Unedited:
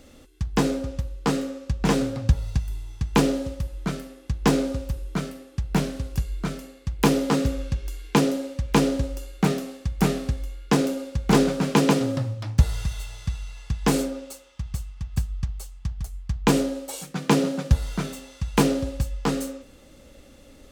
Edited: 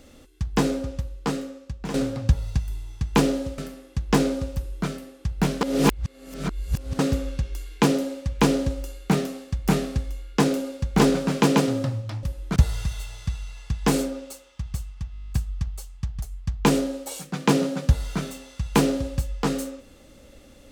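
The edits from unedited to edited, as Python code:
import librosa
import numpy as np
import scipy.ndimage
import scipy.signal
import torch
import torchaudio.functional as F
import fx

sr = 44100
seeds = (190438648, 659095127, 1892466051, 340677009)

y = fx.edit(x, sr, fx.fade_out_to(start_s=0.86, length_s=1.08, floor_db=-12.0),
    fx.move(start_s=3.58, length_s=0.33, to_s=12.56),
    fx.reverse_span(start_s=5.94, length_s=1.38),
    fx.stutter(start_s=15.12, slice_s=0.02, count=10), tone=tone)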